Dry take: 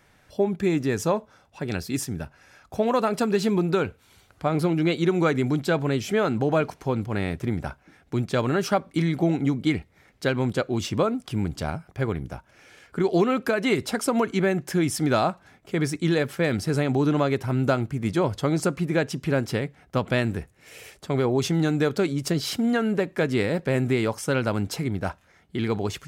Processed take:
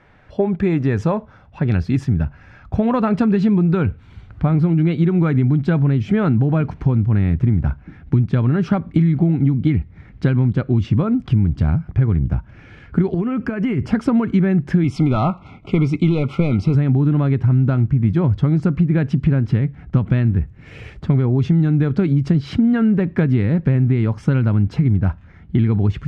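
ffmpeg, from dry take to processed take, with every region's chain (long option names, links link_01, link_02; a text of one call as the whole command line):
ffmpeg -i in.wav -filter_complex "[0:a]asettb=1/sr,asplit=3[link_01][link_02][link_03];[link_01]atrim=end=13.144[link_04];[link_02]atrim=start=13.14:end=13.91,asetpts=PTS-STARTPTS,afade=type=in:duration=0.004:curve=qsin,afade=type=out:start_time=0.766:duration=0.004:curve=qsin,asuperstop=centerf=3800:order=4:qfactor=3.6,acompressor=threshold=-31dB:ratio=4:attack=3.2:release=140:knee=1:detection=peak[link_05];[link_03]atrim=start=13.906[link_06];[link_04][link_05]acrossfade=duration=0.004:curve1=hsin:curve2=qsin[link_07];[link_07][link_06]acrossfade=duration=0.004:curve1=qsin:curve2=hsin,asettb=1/sr,asplit=3[link_08][link_09][link_10];[link_08]atrim=end=14.844[link_11];[link_09]atrim=start=14.84:end=16.75,asetpts=PTS-STARTPTS,afade=type=in:duration=0.004:curve=qsin,afade=type=out:start_time=1.906:duration=0.004:curve=qsin,asplit=2[link_12][link_13];[link_13]highpass=frequency=720:poles=1,volume=13dB,asoftclip=type=tanh:threshold=-10dB[link_14];[link_12][link_14]amix=inputs=2:normalize=0,lowpass=frequency=5300:poles=1,volume=-6dB,asuperstop=centerf=1700:order=12:qfactor=2.6[link_15];[link_10]atrim=start=16.746[link_16];[link_11][link_15]acrossfade=duration=0.004:curve1=hsin:curve2=qsin[link_17];[link_17][link_16]acrossfade=duration=0.004:curve1=qsin:curve2=hsin,lowpass=2300,asubboost=boost=7.5:cutoff=190,acompressor=threshold=-21dB:ratio=6,volume=8dB" out.wav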